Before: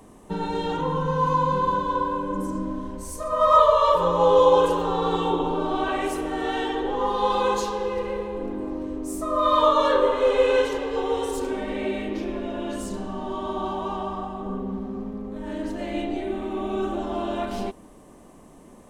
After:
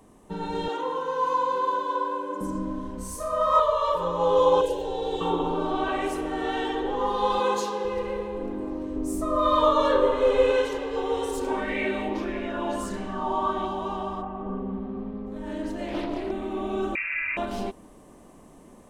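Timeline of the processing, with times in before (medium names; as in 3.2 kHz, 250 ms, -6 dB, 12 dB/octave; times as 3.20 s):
0.68–2.41 s: Chebyshev high-pass 350 Hz, order 3
2.94–3.60 s: flutter echo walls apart 5.4 m, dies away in 0.46 s
4.61–5.21 s: static phaser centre 500 Hz, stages 4
5.71–6.65 s: treble shelf 7.6 kHz -5 dB
7.40–7.85 s: high-pass 140 Hz
8.95–10.52 s: bass shelf 340 Hz +7 dB
11.47–13.66 s: sweeping bell 1.6 Hz 820–2200 Hz +13 dB
14.21–15.25 s: low-pass 2.4 kHz -> 4.4 kHz 24 dB/octave
15.88–16.31 s: loudspeaker Doppler distortion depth 0.51 ms
16.95–17.37 s: frequency inversion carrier 2.7 kHz
whole clip: level rider gain up to 4 dB; trim -5.5 dB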